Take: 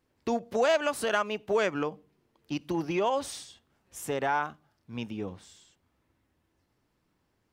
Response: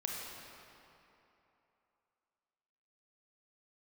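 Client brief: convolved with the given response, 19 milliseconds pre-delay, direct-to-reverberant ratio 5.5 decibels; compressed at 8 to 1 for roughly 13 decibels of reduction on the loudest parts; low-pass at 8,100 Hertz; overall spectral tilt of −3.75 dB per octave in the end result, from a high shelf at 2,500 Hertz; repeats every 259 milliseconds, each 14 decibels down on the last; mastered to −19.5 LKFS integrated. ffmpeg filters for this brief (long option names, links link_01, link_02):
-filter_complex "[0:a]lowpass=8100,highshelf=frequency=2500:gain=4.5,acompressor=threshold=-34dB:ratio=8,aecho=1:1:259|518:0.2|0.0399,asplit=2[link_01][link_02];[1:a]atrim=start_sample=2205,adelay=19[link_03];[link_02][link_03]afir=irnorm=-1:irlink=0,volume=-8dB[link_04];[link_01][link_04]amix=inputs=2:normalize=0,volume=19.5dB"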